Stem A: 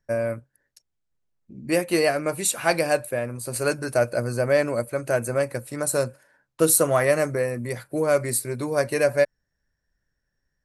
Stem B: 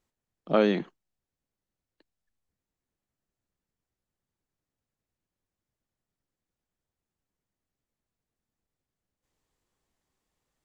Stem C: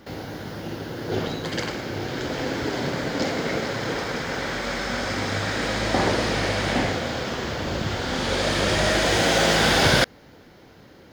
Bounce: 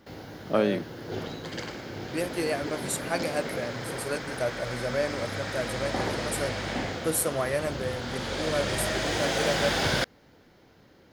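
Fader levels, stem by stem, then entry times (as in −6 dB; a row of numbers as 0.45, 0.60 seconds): −8.5, −2.0, −8.0 decibels; 0.45, 0.00, 0.00 seconds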